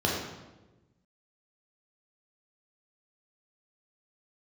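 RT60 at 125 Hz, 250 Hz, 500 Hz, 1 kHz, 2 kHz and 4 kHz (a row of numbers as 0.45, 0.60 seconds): 1.6, 1.4, 1.3, 1.0, 0.90, 0.80 seconds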